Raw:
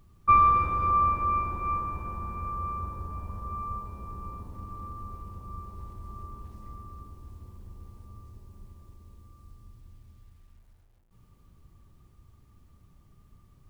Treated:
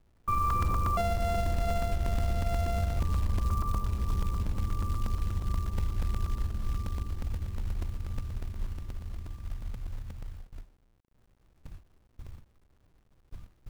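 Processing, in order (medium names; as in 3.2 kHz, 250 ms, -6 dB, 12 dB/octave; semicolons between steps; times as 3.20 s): 0.97–3.00 s: sorted samples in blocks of 64 samples; gate with hold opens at -46 dBFS; tilt EQ -3 dB/octave; peak limiter -20.5 dBFS, peak gain reduction 14.5 dB; companded quantiser 6-bit; crackling interface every 0.12 s, samples 128, repeat, from 0.50 s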